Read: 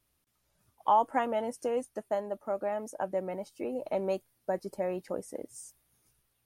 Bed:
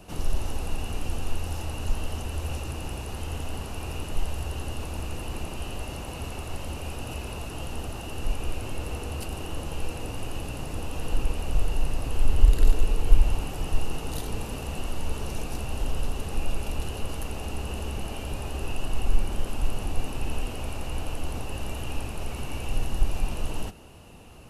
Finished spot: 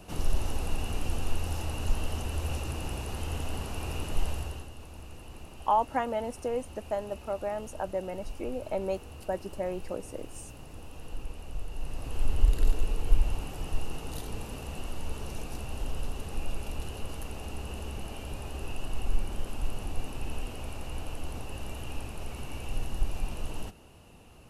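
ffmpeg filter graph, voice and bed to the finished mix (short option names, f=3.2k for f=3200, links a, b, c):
-filter_complex "[0:a]adelay=4800,volume=-0.5dB[a];[1:a]volume=6dB,afade=t=out:st=4.29:d=0.4:silence=0.266073,afade=t=in:st=11.7:d=0.52:silence=0.446684[b];[a][b]amix=inputs=2:normalize=0"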